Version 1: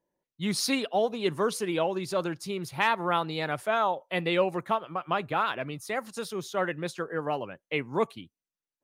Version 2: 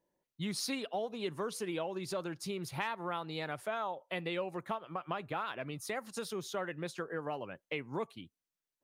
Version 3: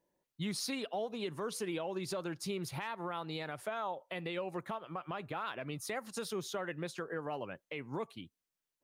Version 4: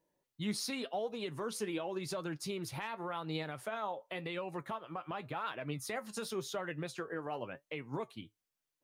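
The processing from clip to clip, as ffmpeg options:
ffmpeg -i in.wav -af "acompressor=threshold=-37dB:ratio=3" out.wav
ffmpeg -i in.wav -af "alimiter=level_in=5dB:limit=-24dB:level=0:latency=1:release=80,volume=-5dB,volume=1dB" out.wav
ffmpeg -i in.wav -af "flanger=delay=6.3:depth=3.2:regen=62:speed=0.9:shape=sinusoidal,volume=4dB" out.wav

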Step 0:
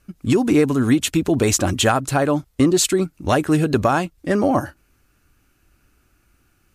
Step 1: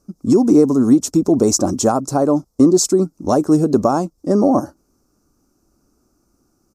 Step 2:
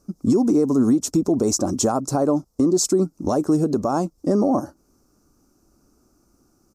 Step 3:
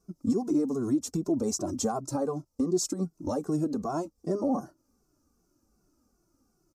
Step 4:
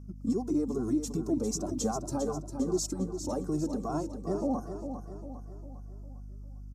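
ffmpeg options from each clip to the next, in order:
ffmpeg -i in.wav -af "firequalizer=gain_entry='entry(100,0);entry(210,12);entry(1200,5);entry(1700,-12);entry(3000,-15);entry(5400,12);entry(9600,2)':delay=0.05:min_phase=1,volume=-6.5dB" out.wav
ffmpeg -i in.wav -af "alimiter=limit=-11.5dB:level=0:latency=1:release=311,volume=1.5dB" out.wav
ffmpeg -i in.wav -filter_complex "[0:a]asplit=2[link_01][link_02];[link_02]adelay=2.2,afreqshift=-2.6[link_03];[link_01][link_03]amix=inputs=2:normalize=1,volume=-6.5dB" out.wav
ffmpeg -i in.wav -af "aeval=exprs='val(0)+0.00891*(sin(2*PI*50*n/s)+sin(2*PI*2*50*n/s)/2+sin(2*PI*3*50*n/s)/3+sin(2*PI*4*50*n/s)/4+sin(2*PI*5*50*n/s)/5)':channel_layout=same,aecho=1:1:402|804|1206|1608|2010:0.376|0.18|0.0866|0.0416|0.02,volume=-3dB" out.wav

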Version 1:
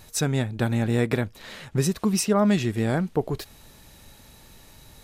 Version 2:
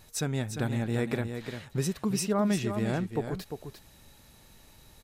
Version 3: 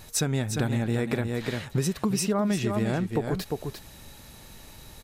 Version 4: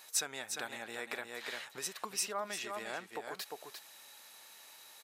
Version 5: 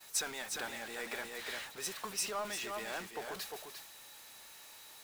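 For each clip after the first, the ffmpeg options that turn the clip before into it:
ffmpeg -i in.wav -af "aecho=1:1:349:0.398,volume=-6.5dB" out.wav
ffmpeg -i in.wav -af "acompressor=threshold=-31dB:ratio=5,volume=8.5dB" out.wav
ffmpeg -i in.wav -af "highpass=830,volume=-4.5dB" out.wav
ffmpeg -i in.wav -af "aeval=exprs='val(0)+0.5*0.015*sgn(val(0))':channel_layout=same,agate=range=-33dB:threshold=-35dB:ratio=3:detection=peak,volume=-3dB" out.wav

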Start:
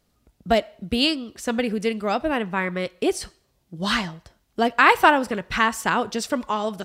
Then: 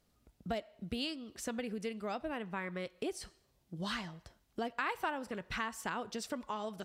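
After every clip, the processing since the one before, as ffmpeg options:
ffmpeg -i in.wav -af "acompressor=threshold=-34dB:ratio=2.5,volume=-6dB" out.wav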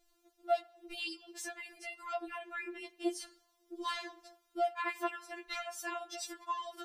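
ffmpeg -i in.wav -filter_complex "[0:a]asplit=2[link_01][link_02];[link_02]alimiter=level_in=7dB:limit=-24dB:level=0:latency=1:release=39,volume=-7dB,volume=1dB[link_03];[link_01][link_03]amix=inputs=2:normalize=0,afftfilt=real='re*4*eq(mod(b,16),0)':imag='im*4*eq(mod(b,16),0)':win_size=2048:overlap=0.75,volume=-2dB" out.wav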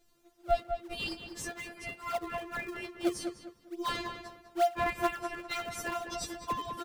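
ffmpeg -i in.wav -filter_complex "[0:a]asplit=2[link_01][link_02];[link_02]acrusher=samples=35:mix=1:aa=0.000001:lfo=1:lforange=56:lforate=2.3,volume=-8dB[link_03];[link_01][link_03]amix=inputs=2:normalize=0,asplit=2[link_04][link_05];[link_05]adelay=201,lowpass=frequency=2600:poles=1,volume=-7dB,asplit=2[link_06][link_07];[link_07]adelay=201,lowpass=frequency=2600:poles=1,volume=0.3,asplit=2[link_08][link_09];[link_09]adelay=201,lowpass=frequency=2600:poles=1,volume=0.3,asplit=2[link_10][link_11];[link_11]adelay=201,lowpass=frequency=2600:poles=1,volume=0.3[link_12];[link_04][link_06][link_08][link_10][link_12]amix=inputs=5:normalize=0,volume=2.5dB" out.wav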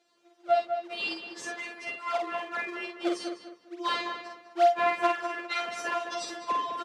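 ffmpeg -i in.wav -filter_complex "[0:a]highpass=410,lowpass=5100,asplit=2[link_01][link_02];[link_02]adelay=49,volume=-4dB[link_03];[link_01][link_03]amix=inputs=2:normalize=0,volume=4dB" out.wav

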